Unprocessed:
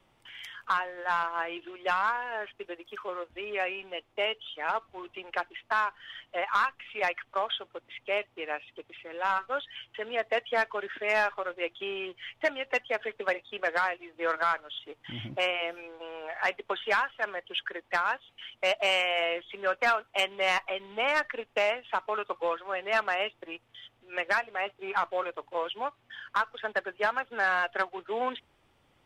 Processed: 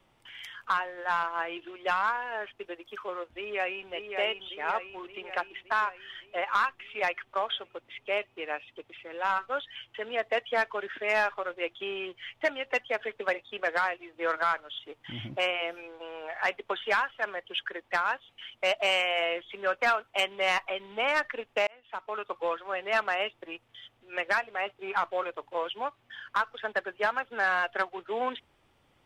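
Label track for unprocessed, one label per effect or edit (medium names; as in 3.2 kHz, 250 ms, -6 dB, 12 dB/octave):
3.250000	3.910000	echo throw 570 ms, feedback 60%, level -5 dB
21.670000	22.710000	fade in equal-power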